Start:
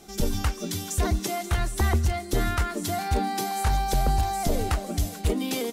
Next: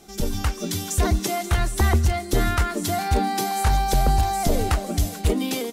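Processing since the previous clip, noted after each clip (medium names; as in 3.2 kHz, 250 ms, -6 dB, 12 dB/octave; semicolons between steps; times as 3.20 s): level rider gain up to 4 dB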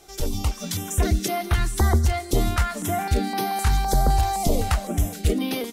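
step-sequenced notch 3.9 Hz 210–7400 Hz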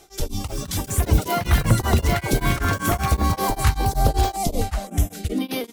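ever faster or slower copies 340 ms, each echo +6 st, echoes 3; tremolo of two beating tones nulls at 5.2 Hz; trim +2.5 dB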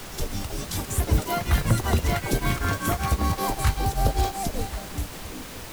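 fade out at the end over 1.50 s; added noise pink -34 dBFS; trim -4 dB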